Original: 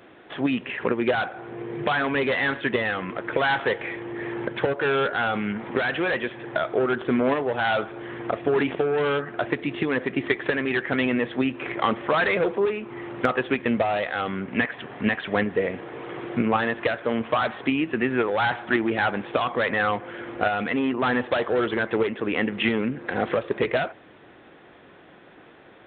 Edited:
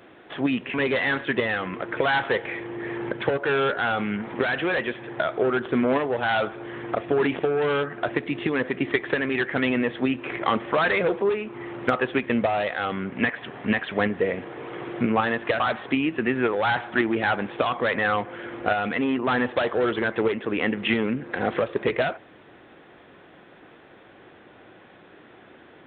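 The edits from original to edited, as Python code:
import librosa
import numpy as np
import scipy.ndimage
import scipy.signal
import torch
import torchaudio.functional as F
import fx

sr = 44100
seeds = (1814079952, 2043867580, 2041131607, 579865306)

y = fx.edit(x, sr, fx.cut(start_s=0.74, length_s=1.36),
    fx.cut(start_s=16.96, length_s=0.39), tone=tone)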